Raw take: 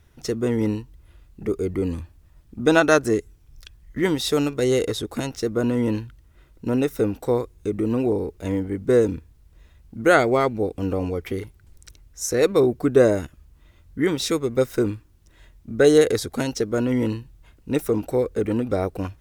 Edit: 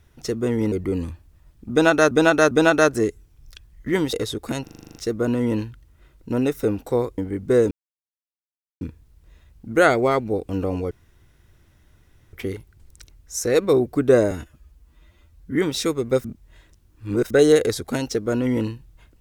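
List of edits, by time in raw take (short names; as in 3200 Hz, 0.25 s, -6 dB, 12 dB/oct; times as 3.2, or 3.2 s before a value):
0.72–1.62 cut
2.61–3.01 loop, 3 plays
4.23–4.81 cut
5.31 stutter 0.04 s, 9 plays
7.54–8.57 cut
9.1 insert silence 1.10 s
11.2 insert room tone 1.42 s
13.18–14.01 stretch 1.5×
14.7–15.76 reverse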